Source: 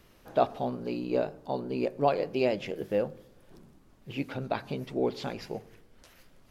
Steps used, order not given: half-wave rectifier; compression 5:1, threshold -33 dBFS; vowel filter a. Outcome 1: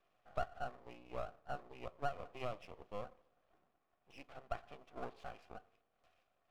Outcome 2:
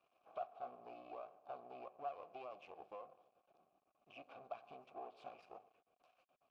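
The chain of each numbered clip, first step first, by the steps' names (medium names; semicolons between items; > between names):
vowel filter > half-wave rectifier > compression; half-wave rectifier > compression > vowel filter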